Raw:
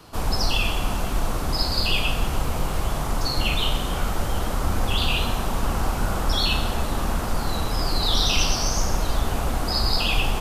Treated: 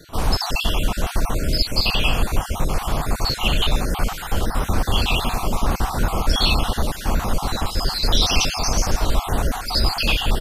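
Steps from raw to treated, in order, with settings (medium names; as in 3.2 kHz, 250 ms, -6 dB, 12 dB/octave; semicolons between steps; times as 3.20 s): random holes in the spectrogram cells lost 36%; echo from a far wall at 260 m, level -15 dB; trim +4.5 dB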